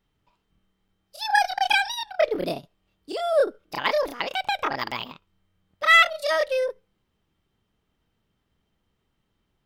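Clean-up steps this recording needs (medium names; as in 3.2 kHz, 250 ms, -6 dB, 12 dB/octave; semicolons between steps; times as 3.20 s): clip repair -8 dBFS; interpolate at 0.88/4.48/4.91 s, 6.4 ms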